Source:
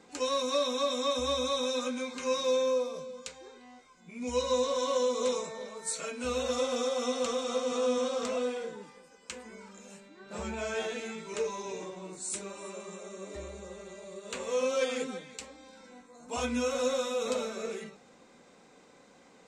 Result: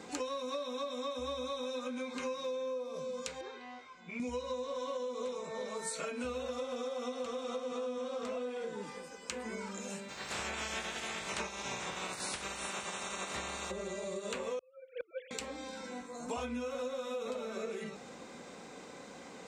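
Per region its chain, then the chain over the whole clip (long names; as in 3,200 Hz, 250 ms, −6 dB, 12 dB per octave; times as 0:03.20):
0:03.41–0:04.20: low-pass filter 3,500 Hz + low-shelf EQ 490 Hz −9.5 dB + flutter between parallel walls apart 11.6 metres, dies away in 0.22 s
0:10.08–0:13.70: ceiling on every frequency bin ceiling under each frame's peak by 28 dB + parametric band 300 Hz −4.5 dB 0.42 octaves
0:14.59–0:15.31: three sine waves on the formant tracks + gate with flip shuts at −30 dBFS, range −30 dB + saturating transformer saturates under 730 Hz
whole clip: high-pass filter 41 Hz; dynamic equaliser 7,000 Hz, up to −8 dB, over −53 dBFS, Q 0.7; downward compressor 12 to 1, threshold −44 dBFS; level +8.5 dB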